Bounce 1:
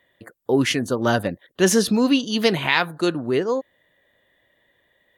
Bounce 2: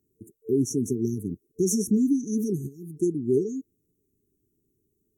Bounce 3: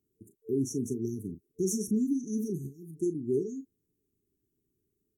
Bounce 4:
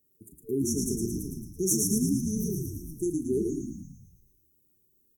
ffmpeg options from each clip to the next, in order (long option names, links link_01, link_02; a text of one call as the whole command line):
ffmpeg -i in.wav -af "alimiter=limit=-13dB:level=0:latency=1:release=235,afftfilt=real='re*(1-between(b*sr/4096,450,5500))':imag='im*(1-between(b*sr/4096,450,5500))':win_size=4096:overlap=0.75" out.wav
ffmpeg -i in.wav -filter_complex "[0:a]asplit=2[link_01][link_02];[link_02]adelay=37,volume=-11dB[link_03];[link_01][link_03]amix=inputs=2:normalize=0,volume=-6.5dB" out.wav
ffmpeg -i in.wav -filter_complex "[0:a]aemphasis=mode=production:type=50kf,asplit=9[link_01][link_02][link_03][link_04][link_05][link_06][link_07][link_08][link_09];[link_02]adelay=111,afreqshift=-43,volume=-3.5dB[link_10];[link_03]adelay=222,afreqshift=-86,volume=-8.5dB[link_11];[link_04]adelay=333,afreqshift=-129,volume=-13.6dB[link_12];[link_05]adelay=444,afreqshift=-172,volume=-18.6dB[link_13];[link_06]adelay=555,afreqshift=-215,volume=-23.6dB[link_14];[link_07]adelay=666,afreqshift=-258,volume=-28.7dB[link_15];[link_08]adelay=777,afreqshift=-301,volume=-33.7dB[link_16];[link_09]adelay=888,afreqshift=-344,volume=-38.8dB[link_17];[link_01][link_10][link_11][link_12][link_13][link_14][link_15][link_16][link_17]amix=inputs=9:normalize=0" out.wav